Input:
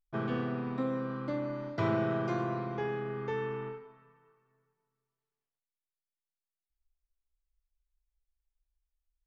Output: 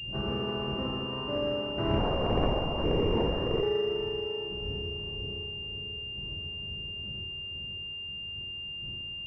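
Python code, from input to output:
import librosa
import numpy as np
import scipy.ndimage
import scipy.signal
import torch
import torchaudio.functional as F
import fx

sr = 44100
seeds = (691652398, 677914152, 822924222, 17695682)

y = np.where(x < 0.0, 10.0 ** (-7.0 / 20.0) * x, x)
y = fx.dmg_wind(y, sr, seeds[0], corner_hz=110.0, level_db=-45.0)
y = scipy.signal.sosfilt(scipy.signal.butter(2, 44.0, 'highpass', fs=sr, output='sos'), y)
y = fx.dmg_noise_colour(y, sr, seeds[1], colour='pink', level_db=-70.0)
y = fx.echo_split(y, sr, split_hz=600.0, low_ms=533, high_ms=336, feedback_pct=52, wet_db=-4.0)
y = fx.rev_fdn(y, sr, rt60_s=1.5, lf_ratio=0.7, hf_ratio=0.95, size_ms=16.0, drr_db=-2.5)
y = fx.lpc_vocoder(y, sr, seeds[2], excitation='whisper', order=10, at=(1.98, 3.63))
y = fx.pwm(y, sr, carrier_hz=2800.0)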